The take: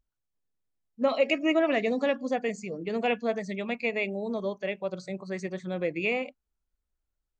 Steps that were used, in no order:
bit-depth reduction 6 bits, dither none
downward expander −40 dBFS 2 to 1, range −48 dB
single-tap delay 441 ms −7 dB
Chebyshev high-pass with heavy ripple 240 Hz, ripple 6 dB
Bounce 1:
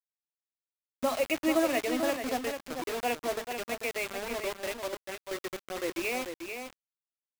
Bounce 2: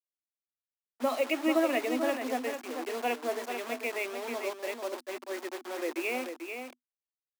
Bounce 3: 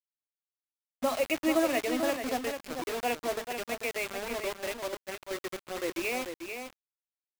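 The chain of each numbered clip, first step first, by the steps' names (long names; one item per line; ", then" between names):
Chebyshev high-pass with heavy ripple, then downward expander, then bit-depth reduction, then single-tap delay
bit-depth reduction, then Chebyshev high-pass with heavy ripple, then downward expander, then single-tap delay
Chebyshev high-pass with heavy ripple, then bit-depth reduction, then single-tap delay, then downward expander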